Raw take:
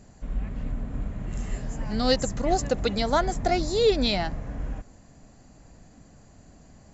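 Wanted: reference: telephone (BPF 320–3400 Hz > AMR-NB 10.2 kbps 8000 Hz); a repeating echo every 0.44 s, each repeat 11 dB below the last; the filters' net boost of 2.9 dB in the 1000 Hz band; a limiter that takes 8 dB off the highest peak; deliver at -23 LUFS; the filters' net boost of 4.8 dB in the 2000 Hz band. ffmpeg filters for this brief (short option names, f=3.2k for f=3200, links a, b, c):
-af "equalizer=f=1k:t=o:g=3.5,equalizer=f=2k:t=o:g=5.5,alimiter=limit=-16.5dB:level=0:latency=1,highpass=320,lowpass=3.4k,aecho=1:1:440|880|1320:0.282|0.0789|0.0221,volume=8dB" -ar 8000 -c:a libopencore_amrnb -b:a 10200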